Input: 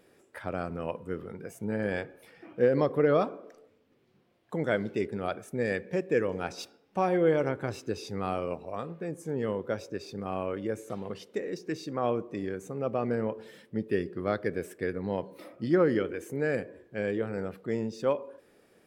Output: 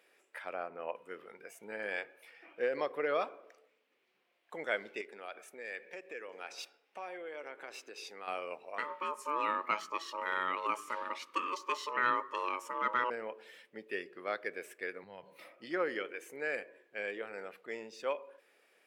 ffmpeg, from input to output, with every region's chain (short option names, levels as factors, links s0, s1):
-filter_complex "[0:a]asettb=1/sr,asplit=3[s0][s1][s2];[s0]atrim=end=0.544[s3];[s1]atrim=start=0.54:end=0.95,asetpts=PTS-STARTPTS,afade=t=in:d=0.004:c=qsin,afade=t=out:st=0.406:d=0.004:c=qsin,lowpass=f=1300:p=1,equalizer=f=710:t=o:w=1.7:g=4.5[s4];[s2]atrim=start=0.946[s5];[s3][s4]acrossfade=d=0.004:c1=hsin:c2=qsin[s6];[s6][s5]acrossfade=d=0.004:c1=qsin:c2=hsin,asettb=1/sr,asplit=3[s7][s8][s9];[s7]atrim=end=5.014[s10];[s8]atrim=start=5.01:end=8.28,asetpts=PTS-STARTPTS,afade=t=in:d=0.004:c=qsin,afade=t=out:st=3.266:d=0.004:c=qsin,highpass=220,acompressor=threshold=0.0178:ratio=3:attack=3.2:release=140:knee=1:detection=peak[s11];[s9]atrim=start=8.276[s12];[s10][s11]acrossfade=d=0.004:c1=hsin:c2=qsin[s13];[s13][s12]acrossfade=d=0.004:c1=qsin:c2=hsin,asettb=1/sr,asplit=3[s14][s15][s16];[s14]atrim=end=8.784[s17];[s15]atrim=start=8.78:end=13.1,asetpts=PTS-STARTPTS,afade=t=in:d=0.004:c=qsin,afade=t=out:st=4.316:d=0.004:c=qsin,acontrast=80,aeval=exprs='val(0)*sin(2*PI*740*n/s)':c=same[s18];[s16]atrim=start=13.096[s19];[s17][s18]acrossfade=d=0.004:c1=hsin:c2=qsin[s20];[s20][s19]acrossfade=d=0.004:c1=qsin:c2=hsin,asettb=1/sr,asplit=3[s21][s22][s23];[s21]atrim=end=15.034[s24];[s22]atrim=start=15.03:end=15.52,asetpts=PTS-STARTPTS,afade=t=in:d=0.004:c=qsin,afade=t=out:st=0.486:d=0.004:c=qsin,lowshelf=f=200:t=q:w=1.5:g=13.5,acompressor=threshold=0.02:ratio=3:attack=3.2:release=140:knee=1:detection=peak[s25];[s23]atrim=start=15.516[s26];[s24][s25]acrossfade=d=0.004:c1=hsin:c2=qsin[s27];[s27][s26]acrossfade=d=0.004:c1=qsin:c2=hsin,highpass=570,equalizer=f=2400:t=o:w=0.92:g=8,volume=0.562"